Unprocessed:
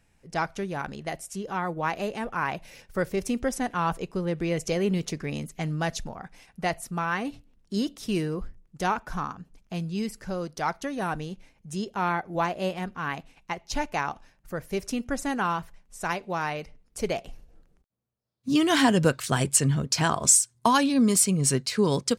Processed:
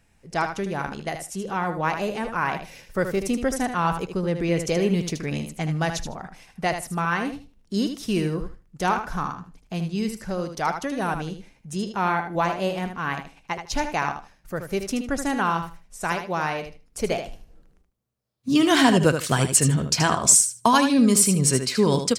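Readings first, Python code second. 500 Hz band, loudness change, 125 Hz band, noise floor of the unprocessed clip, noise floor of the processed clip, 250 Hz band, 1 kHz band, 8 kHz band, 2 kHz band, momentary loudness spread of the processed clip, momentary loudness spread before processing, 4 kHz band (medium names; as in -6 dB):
+3.5 dB, +3.5 dB, +3.5 dB, -66 dBFS, -60 dBFS, +3.5 dB, +3.5 dB, +3.5 dB, +3.5 dB, 16 LU, 16 LU, +3.5 dB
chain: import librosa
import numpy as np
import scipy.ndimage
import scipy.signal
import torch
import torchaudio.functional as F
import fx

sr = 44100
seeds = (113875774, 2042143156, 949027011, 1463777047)

y = fx.echo_feedback(x, sr, ms=77, feedback_pct=17, wet_db=-8.0)
y = y * librosa.db_to_amplitude(3.0)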